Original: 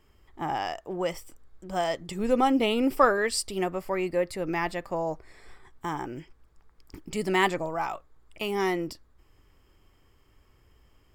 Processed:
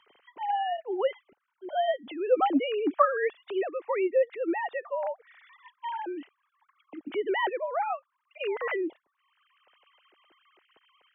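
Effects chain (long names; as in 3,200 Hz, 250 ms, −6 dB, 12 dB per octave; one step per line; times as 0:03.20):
three sine waves on the formant tracks
multiband upward and downward compressor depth 40%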